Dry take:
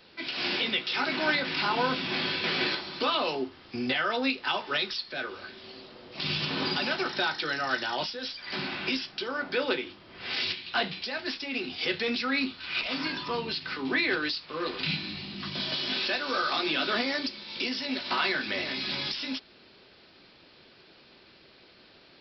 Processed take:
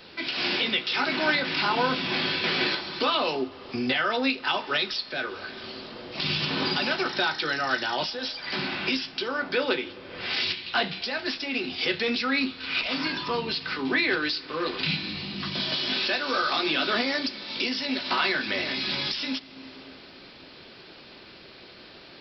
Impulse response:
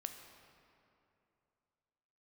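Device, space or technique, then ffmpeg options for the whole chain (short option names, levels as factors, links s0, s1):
ducked reverb: -filter_complex "[0:a]asplit=3[s0][s1][s2];[1:a]atrim=start_sample=2205[s3];[s1][s3]afir=irnorm=-1:irlink=0[s4];[s2]apad=whole_len=979347[s5];[s4][s5]sidechaincompress=threshold=0.00631:ratio=8:attack=45:release=390,volume=1.68[s6];[s0][s6]amix=inputs=2:normalize=0,volume=1.19"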